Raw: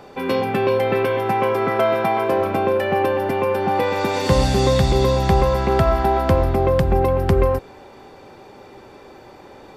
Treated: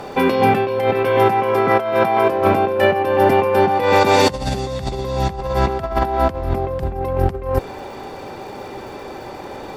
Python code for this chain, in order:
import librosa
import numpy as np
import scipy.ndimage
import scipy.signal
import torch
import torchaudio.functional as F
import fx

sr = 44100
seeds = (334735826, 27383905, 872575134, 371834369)

y = fx.dmg_crackle(x, sr, seeds[0], per_s=280.0, level_db=-49.0)
y = fx.over_compress(y, sr, threshold_db=-22.0, ratio=-0.5)
y = fx.peak_eq(y, sr, hz=760.0, db=2.0, octaves=0.77)
y = y * 10.0 ** (5.0 / 20.0)